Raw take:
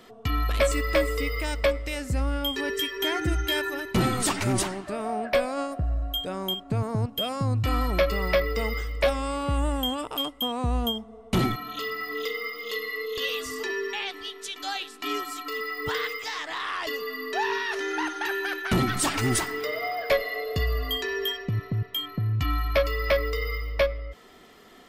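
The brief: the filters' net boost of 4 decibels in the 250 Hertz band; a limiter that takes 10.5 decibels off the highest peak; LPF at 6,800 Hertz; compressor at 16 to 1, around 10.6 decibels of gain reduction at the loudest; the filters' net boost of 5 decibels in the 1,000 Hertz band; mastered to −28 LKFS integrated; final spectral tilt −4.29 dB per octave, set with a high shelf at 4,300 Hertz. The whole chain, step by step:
low-pass filter 6,800 Hz
parametric band 250 Hz +4.5 dB
parametric band 1,000 Hz +6 dB
high-shelf EQ 4,300 Hz +6.5 dB
downward compressor 16 to 1, threshold −26 dBFS
level +5 dB
brickwall limiter −19.5 dBFS

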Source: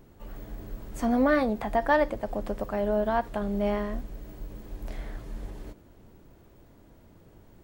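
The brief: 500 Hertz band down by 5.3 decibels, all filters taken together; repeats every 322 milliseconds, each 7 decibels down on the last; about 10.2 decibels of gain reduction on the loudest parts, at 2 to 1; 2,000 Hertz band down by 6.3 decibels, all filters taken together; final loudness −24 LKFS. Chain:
parametric band 500 Hz −6.5 dB
parametric band 2,000 Hz −7.5 dB
downward compressor 2 to 1, threshold −42 dBFS
repeating echo 322 ms, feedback 45%, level −7 dB
level +16.5 dB

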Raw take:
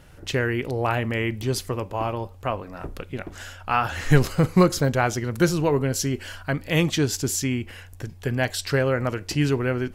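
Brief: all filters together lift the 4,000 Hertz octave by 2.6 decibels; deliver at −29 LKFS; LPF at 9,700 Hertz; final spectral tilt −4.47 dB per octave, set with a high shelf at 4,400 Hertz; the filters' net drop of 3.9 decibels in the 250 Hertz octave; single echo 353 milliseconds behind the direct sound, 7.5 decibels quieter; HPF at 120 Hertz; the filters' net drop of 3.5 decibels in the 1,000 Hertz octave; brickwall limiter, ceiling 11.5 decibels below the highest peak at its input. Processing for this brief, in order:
high-pass filter 120 Hz
low-pass filter 9,700 Hz
parametric band 250 Hz −5 dB
parametric band 1,000 Hz −4.5 dB
parametric band 4,000 Hz +8.5 dB
high-shelf EQ 4,400 Hz −8 dB
brickwall limiter −17.5 dBFS
single-tap delay 353 ms −7.5 dB

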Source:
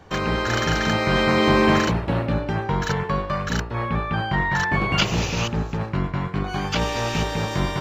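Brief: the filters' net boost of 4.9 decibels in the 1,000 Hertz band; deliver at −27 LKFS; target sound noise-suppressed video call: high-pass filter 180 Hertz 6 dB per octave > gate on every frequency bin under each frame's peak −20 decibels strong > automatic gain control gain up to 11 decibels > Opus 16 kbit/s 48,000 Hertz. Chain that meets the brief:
high-pass filter 180 Hz 6 dB per octave
parametric band 1,000 Hz +6 dB
gate on every frequency bin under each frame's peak −20 dB strong
automatic gain control gain up to 11 dB
level −5 dB
Opus 16 kbit/s 48,000 Hz

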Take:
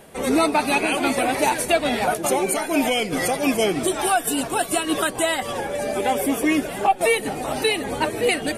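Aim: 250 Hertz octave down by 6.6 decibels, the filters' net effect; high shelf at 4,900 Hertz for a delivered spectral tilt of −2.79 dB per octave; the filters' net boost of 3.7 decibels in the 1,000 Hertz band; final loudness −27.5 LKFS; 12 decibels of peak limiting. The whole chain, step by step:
parametric band 250 Hz −9 dB
parametric band 1,000 Hz +6 dB
high-shelf EQ 4,900 Hz −4.5 dB
level −2 dB
brickwall limiter −18.5 dBFS

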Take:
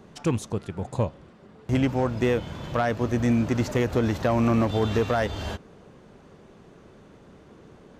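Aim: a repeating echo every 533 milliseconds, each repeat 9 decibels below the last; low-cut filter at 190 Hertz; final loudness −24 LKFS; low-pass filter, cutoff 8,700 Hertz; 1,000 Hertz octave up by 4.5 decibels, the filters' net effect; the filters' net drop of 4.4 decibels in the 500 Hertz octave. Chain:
high-pass filter 190 Hz
low-pass filter 8,700 Hz
parametric band 500 Hz −8 dB
parametric band 1,000 Hz +9 dB
repeating echo 533 ms, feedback 35%, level −9 dB
level +3.5 dB

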